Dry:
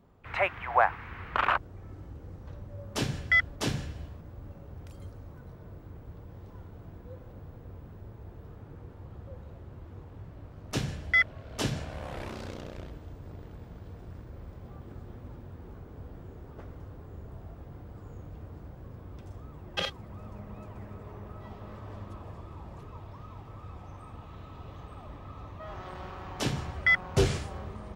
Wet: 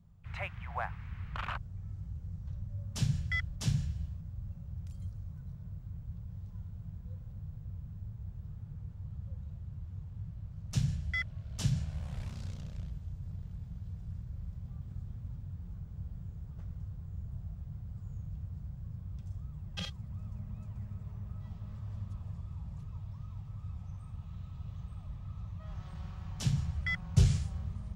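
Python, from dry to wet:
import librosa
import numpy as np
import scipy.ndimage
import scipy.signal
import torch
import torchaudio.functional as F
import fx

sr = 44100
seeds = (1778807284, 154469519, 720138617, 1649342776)

y = fx.curve_eq(x, sr, hz=(170.0, 310.0, 640.0, 1900.0, 7100.0, 12000.0), db=(0, -25, -19, -16, -6, -11))
y = y * librosa.db_to_amplitude(3.5)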